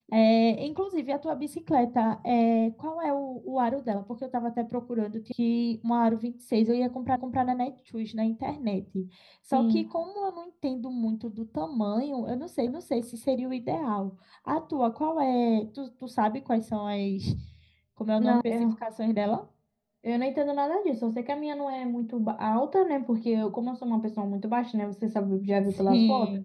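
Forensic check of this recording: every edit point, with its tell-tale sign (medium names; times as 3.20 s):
5.32 s: sound stops dead
7.16 s: repeat of the last 0.27 s
12.67 s: repeat of the last 0.33 s
18.41 s: sound stops dead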